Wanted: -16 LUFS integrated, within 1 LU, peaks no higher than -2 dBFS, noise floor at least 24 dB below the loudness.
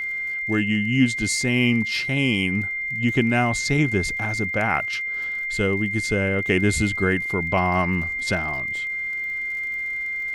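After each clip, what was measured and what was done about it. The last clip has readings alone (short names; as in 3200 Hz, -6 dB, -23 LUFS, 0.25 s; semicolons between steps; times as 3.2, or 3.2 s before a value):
ticks 46/s; steady tone 2100 Hz; tone level -25 dBFS; loudness -22.0 LUFS; peak -6.0 dBFS; loudness target -16.0 LUFS
-> de-click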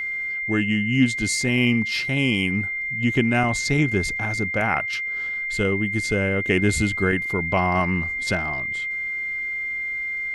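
ticks 0.29/s; steady tone 2100 Hz; tone level -25 dBFS
-> notch 2100 Hz, Q 30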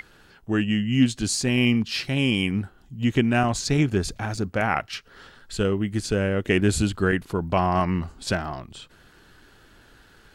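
steady tone none; loudness -24.0 LUFS; peak -7.5 dBFS; loudness target -16.0 LUFS
-> gain +8 dB; limiter -2 dBFS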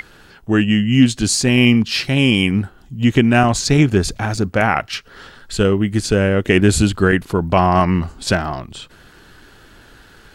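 loudness -16.0 LUFS; peak -2.0 dBFS; noise floor -46 dBFS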